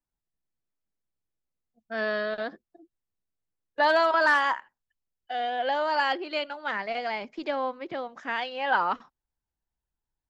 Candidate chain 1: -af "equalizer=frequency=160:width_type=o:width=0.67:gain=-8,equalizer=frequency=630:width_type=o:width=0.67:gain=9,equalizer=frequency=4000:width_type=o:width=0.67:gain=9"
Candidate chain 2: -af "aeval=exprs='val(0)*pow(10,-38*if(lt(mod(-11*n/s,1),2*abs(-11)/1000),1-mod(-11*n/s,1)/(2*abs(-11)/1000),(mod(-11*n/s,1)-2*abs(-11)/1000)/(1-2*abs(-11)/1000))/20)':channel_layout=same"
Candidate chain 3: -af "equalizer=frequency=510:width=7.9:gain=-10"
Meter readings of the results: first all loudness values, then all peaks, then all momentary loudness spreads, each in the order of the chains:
−23.0, −36.5, −28.0 LKFS; −6.5, −13.0, −11.5 dBFS; 14, 14, 15 LU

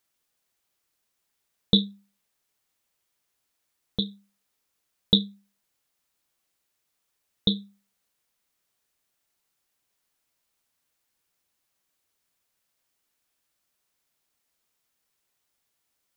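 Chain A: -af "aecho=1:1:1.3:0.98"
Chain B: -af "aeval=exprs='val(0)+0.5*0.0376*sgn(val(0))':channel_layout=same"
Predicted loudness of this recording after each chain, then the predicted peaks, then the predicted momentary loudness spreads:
−23.0, −30.0 LKFS; −2.5, −3.5 dBFS; 12, 7 LU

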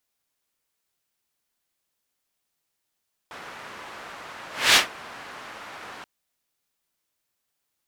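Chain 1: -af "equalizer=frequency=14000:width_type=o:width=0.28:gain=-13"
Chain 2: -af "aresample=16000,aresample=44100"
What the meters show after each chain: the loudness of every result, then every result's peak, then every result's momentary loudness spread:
−20.5, −20.5 LKFS; −5.5, −5.5 dBFS; 21, 21 LU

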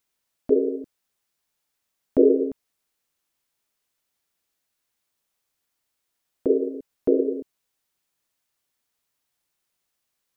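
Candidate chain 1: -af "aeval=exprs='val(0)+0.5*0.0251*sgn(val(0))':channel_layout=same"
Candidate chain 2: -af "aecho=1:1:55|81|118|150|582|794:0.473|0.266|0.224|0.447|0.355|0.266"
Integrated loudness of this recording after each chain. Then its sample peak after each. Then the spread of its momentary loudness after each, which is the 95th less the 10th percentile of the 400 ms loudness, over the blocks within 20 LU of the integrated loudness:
−28.0, −23.5 LKFS; −4.5, −4.0 dBFS; 13, 18 LU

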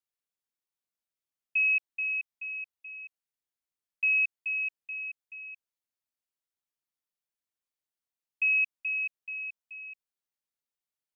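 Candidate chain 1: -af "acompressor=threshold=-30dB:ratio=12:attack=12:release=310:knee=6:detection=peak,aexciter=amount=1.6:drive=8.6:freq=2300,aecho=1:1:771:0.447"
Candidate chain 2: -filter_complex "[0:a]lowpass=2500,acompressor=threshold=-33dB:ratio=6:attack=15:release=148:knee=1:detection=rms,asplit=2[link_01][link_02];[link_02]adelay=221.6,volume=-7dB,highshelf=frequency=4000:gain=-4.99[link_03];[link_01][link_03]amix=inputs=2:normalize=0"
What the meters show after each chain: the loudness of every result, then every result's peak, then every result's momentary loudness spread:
−27.0, −36.0 LKFS; −16.0, −25.5 dBFS; 18, 14 LU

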